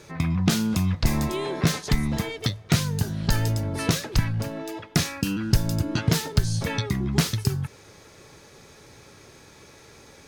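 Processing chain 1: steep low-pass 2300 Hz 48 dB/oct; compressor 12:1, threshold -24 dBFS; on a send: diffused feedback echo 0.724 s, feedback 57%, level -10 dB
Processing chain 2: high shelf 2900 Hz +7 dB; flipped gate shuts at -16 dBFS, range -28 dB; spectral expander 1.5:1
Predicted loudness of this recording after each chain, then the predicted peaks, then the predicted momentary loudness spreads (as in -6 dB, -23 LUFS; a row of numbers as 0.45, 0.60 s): -31.0, -26.5 LUFS; -11.5, -5.5 dBFS; 15, 20 LU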